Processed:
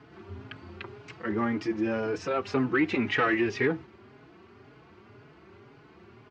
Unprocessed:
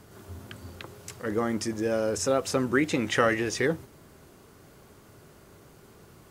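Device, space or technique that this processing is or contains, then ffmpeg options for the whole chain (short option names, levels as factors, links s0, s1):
barber-pole flanger into a guitar amplifier: -filter_complex "[0:a]asplit=2[s0][s1];[s1]adelay=4.3,afreqshift=1.9[s2];[s0][s2]amix=inputs=2:normalize=1,asoftclip=type=tanh:threshold=0.1,highpass=100,equalizer=f=170:t=q:w=4:g=-5,equalizer=f=370:t=q:w=4:g=3,equalizer=f=540:t=q:w=4:g=-9,equalizer=f=2400:t=q:w=4:g=3,equalizer=f=3600:t=q:w=4:g=-5,lowpass=f=3900:w=0.5412,lowpass=f=3900:w=1.3066,volume=1.68"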